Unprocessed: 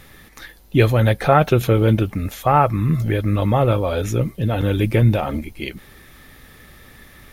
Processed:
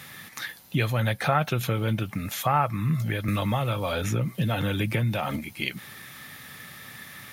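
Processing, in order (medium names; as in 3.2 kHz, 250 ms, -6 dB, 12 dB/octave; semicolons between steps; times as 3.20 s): compression 2:1, threshold -28 dBFS, peak gain reduction 11 dB; high-pass 120 Hz 24 dB/octave; peaking EQ 380 Hz -11.5 dB 1.6 oct; 3.28–5.36 s: three bands compressed up and down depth 100%; trim +5 dB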